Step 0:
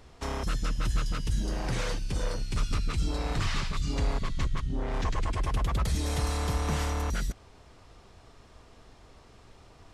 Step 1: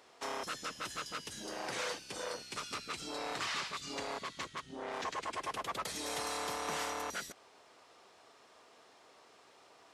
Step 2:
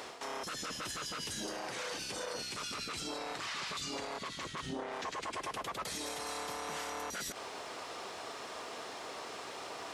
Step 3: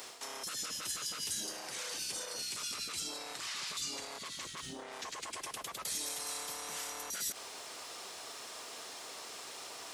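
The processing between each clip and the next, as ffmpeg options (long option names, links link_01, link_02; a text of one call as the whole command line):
ffmpeg -i in.wav -af "highpass=440,volume=-2dB" out.wav
ffmpeg -i in.wav -af "areverse,acompressor=threshold=-46dB:ratio=6,areverse,alimiter=level_in=24dB:limit=-24dB:level=0:latency=1:release=52,volume=-24dB,volume=17dB" out.wav
ffmpeg -i in.wav -af "crystalizer=i=4:c=0,volume=-7.5dB" out.wav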